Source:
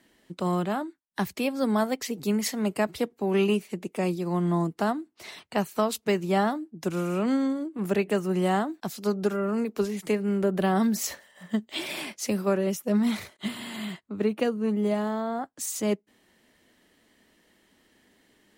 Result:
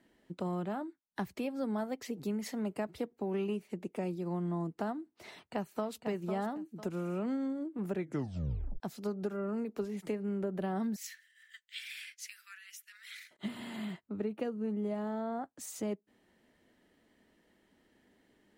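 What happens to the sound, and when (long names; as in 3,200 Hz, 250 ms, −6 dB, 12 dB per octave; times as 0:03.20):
0:05.33–0:06.07: delay throw 500 ms, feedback 20%, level −8 dB
0:07.92: tape stop 0.88 s
0:10.96–0:13.31: Butterworth high-pass 1,600 Hz 48 dB per octave
whole clip: high-shelf EQ 2,100 Hz −9.5 dB; notch filter 1,100 Hz, Q 17; downward compressor 2.5 to 1, threshold −31 dBFS; level −3.5 dB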